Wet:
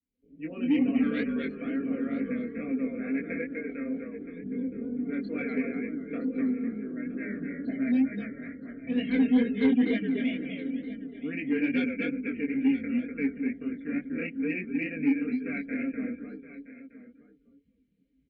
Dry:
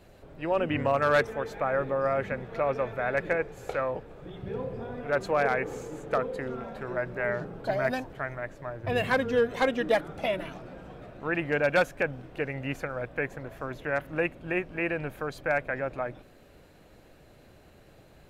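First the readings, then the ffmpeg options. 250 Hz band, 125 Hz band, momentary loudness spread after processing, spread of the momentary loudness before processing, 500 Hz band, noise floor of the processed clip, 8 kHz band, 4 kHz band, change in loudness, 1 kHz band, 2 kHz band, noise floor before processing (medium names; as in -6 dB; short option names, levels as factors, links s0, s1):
+10.5 dB, -7.0 dB, 13 LU, 12 LU, -9.5 dB, -67 dBFS, no reading, -5.0 dB, -0.5 dB, -18.0 dB, -6.5 dB, -55 dBFS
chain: -filter_complex "[0:a]asplit=2[s0][s1];[s1]asplit=5[s2][s3][s4][s5][s6];[s2]adelay=247,afreqshift=-44,volume=0.668[s7];[s3]adelay=494,afreqshift=-88,volume=0.24[s8];[s4]adelay=741,afreqshift=-132,volume=0.0871[s9];[s5]adelay=988,afreqshift=-176,volume=0.0313[s10];[s6]adelay=1235,afreqshift=-220,volume=0.0112[s11];[s7][s8][s9][s10][s11]amix=inputs=5:normalize=0[s12];[s0][s12]amix=inputs=2:normalize=0,afftdn=nr=24:nf=-40,lowpass=5800,aecho=1:1:4.3:0.73,flanger=delay=19:depth=6:speed=2.2,asplit=3[s13][s14][s15];[s13]bandpass=f=270:t=q:w=8,volume=1[s16];[s14]bandpass=f=2290:t=q:w=8,volume=0.501[s17];[s15]bandpass=f=3010:t=q:w=8,volume=0.355[s18];[s16][s17][s18]amix=inputs=3:normalize=0,equalizer=f=1800:w=0.3:g=-7,dynaudnorm=f=100:g=5:m=4.47,asplit=2[s19][s20];[s20]aecho=0:1:970:0.158[s21];[s19][s21]amix=inputs=2:normalize=0,asoftclip=type=tanh:threshold=0.168,volume=1.33"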